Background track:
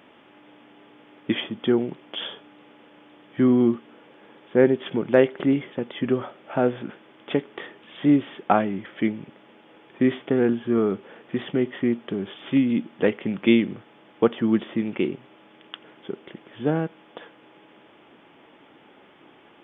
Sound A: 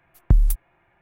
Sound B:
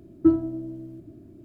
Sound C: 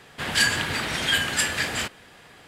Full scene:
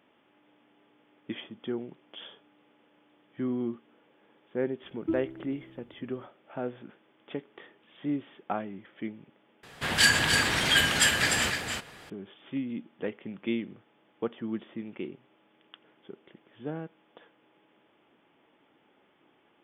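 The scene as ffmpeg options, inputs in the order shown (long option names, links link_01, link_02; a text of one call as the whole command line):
ffmpeg -i bed.wav -i cue0.wav -i cue1.wav -i cue2.wav -filter_complex "[0:a]volume=-13dB[link_01];[3:a]aecho=1:1:298:0.531[link_02];[link_01]asplit=2[link_03][link_04];[link_03]atrim=end=9.634[link_05];[link_02]atrim=end=2.47,asetpts=PTS-STARTPTS,volume=-0.5dB[link_06];[link_04]atrim=start=12.096[link_07];[2:a]atrim=end=1.44,asetpts=PTS-STARTPTS,volume=-13dB,afade=type=in:duration=0.004:curve=hsin,afade=type=out:start_time=1.436:duration=0.004:curve=hsin,adelay=4830[link_08];[link_05][link_06]acrossfade=duration=0.004:curve1=hsin:curve2=hsin[link_09];[link_09][link_07]acrossfade=duration=0.004:curve1=hsin:curve2=hsin[link_10];[link_10][link_08]amix=inputs=2:normalize=0" out.wav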